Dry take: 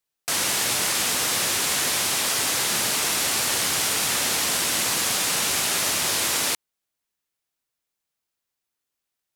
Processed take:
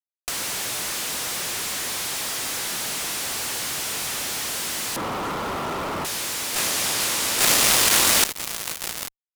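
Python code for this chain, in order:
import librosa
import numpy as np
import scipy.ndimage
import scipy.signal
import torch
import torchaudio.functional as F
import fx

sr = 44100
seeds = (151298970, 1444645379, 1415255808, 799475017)

p1 = fx.echo_feedback(x, sr, ms=845, feedback_pct=54, wet_db=-22)
p2 = fx.volume_shaper(p1, sr, bpm=137, per_beat=1, depth_db=-13, release_ms=102.0, shape='fast start')
p3 = p1 + (p2 * librosa.db_to_amplitude(-5.0))
p4 = fx.cheby_ripple(p3, sr, hz=1400.0, ripple_db=3, at=(4.96, 6.05))
p5 = fx.fuzz(p4, sr, gain_db=44.0, gate_db=-45.0)
y = fx.over_compress(p5, sr, threshold_db=-26.0, ratio=-1.0)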